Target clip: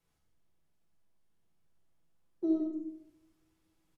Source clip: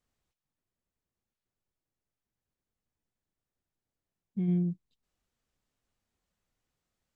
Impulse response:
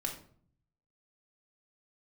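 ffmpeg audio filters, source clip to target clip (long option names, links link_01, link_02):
-filter_complex "[0:a]asetrate=79380,aresample=44100,acrossover=split=270[link_01][link_02];[link_02]acompressor=threshold=-52dB:ratio=2[link_03];[link_01][link_03]amix=inputs=2:normalize=0,aecho=1:1:92:0.473[link_04];[1:a]atrim=start_sample=2205,asetrate=25578,aresample=44100[link_05];[link_04][link_05]afir=irnorm=-1:irlink=0"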